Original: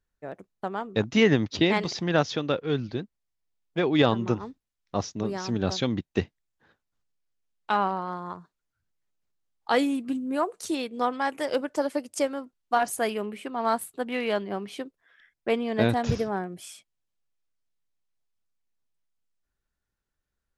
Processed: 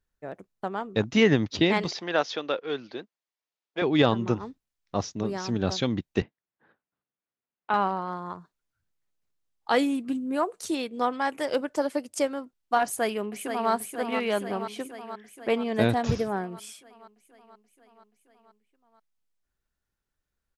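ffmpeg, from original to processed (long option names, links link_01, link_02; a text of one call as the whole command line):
ffmpeg -i in.wav -filter_complex "[0:a]asettb=1/sr,asplit=3[link_01][link_02][link_03];[link_01]atrim=end=1.914[link_04];[link_02]atrim=start=1.91:end=3.82,asetpts=PTS-STARTPTS,afade=type=in:duration=0.004:curve=qsin,afade=type=out:start_time=1.906:duration=0.004:curve=qsin,highpass=420,lowpass=6000[link_05];[link_03]atrim=start=3.816[link_06];[link_04][link_05]acrossfade=duration=0.004:curve1=hsin:curve2=qsin[link_07];[link_07][link_06]acrossfade=duration=0.004:curve1=qsin:curve2=hsin,asettb=1/sr,asplit=3[link_08][link_09][link_10];[link_08]atrim=end=6.224[link_11];[link_09]atrim=start=6.22:end=7.74,asetpts=PTS-STARTPTS,afade=type=in:duration=0.004:curve=qsin,afade=type=out:start_time=1.516:duration=0.004:curve=qsin,highpass=160,lowpass=2200[link_12];[link_10]atrim=start=7.736[link_13];[link_11][link_12]acrossfade=duration=0.004:curve1=hsin:curve2=qsin[link_14];[link_14][link_13]acrossfade=duration=0.004:curve1=qsin:curve2=hsin,asplit=2[link_15][link_16];[link_16]afade=type=in:start_time=12.84:duration=0.01,afade=type=out:start_time=13.71:duration=0.01,aecho=0:1:480|960|1440|1920|2400|2880|3360|3840|4320|4800|5280:0.446684|0.312679|0.218875|0.153212|0.107249|0.0750741|0.0525519|0.0367863|0.0257504|0.0180253|0.0126177[link_17];[link_15][link_17]amix=inputs=2:normalize=0" out.wav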